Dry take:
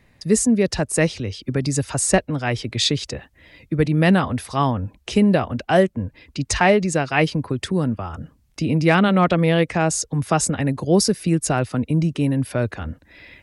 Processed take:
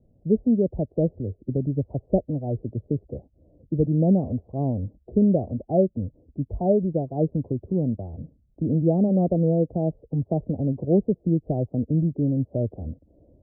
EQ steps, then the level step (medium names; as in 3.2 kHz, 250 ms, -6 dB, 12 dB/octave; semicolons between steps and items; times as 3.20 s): steep low-pass 670 Hz 48 dB/octave; distance through air 350 m; -2.5 dB